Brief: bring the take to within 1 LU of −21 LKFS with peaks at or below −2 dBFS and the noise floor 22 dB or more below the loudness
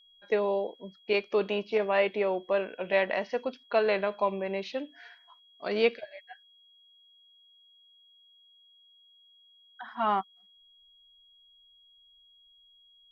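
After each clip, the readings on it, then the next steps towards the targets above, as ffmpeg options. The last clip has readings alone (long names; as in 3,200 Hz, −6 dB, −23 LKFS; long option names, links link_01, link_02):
interfering tone 3,300 Hz; level of the tone −58 dBFS; integrated loudness −29.5 LKFS; sample peak −11.5 dBFS; target loudness −21.0 LKFS
→ -af "bandreject=frequency=3300:width=30"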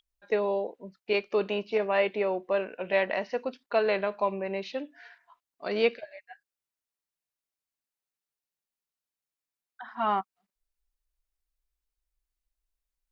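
interfering tone none found; integrated loudness −29.5 LKFS; sample peak −11.5 dBFS; target loudness −21.0 LKFS
→ -af "volume=8.5dB"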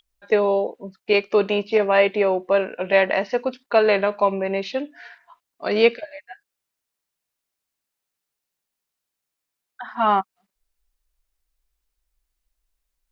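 integrated loudness −21.0 LKFS; sample peak −3.0 dBFS; background noise floor −83 dBFS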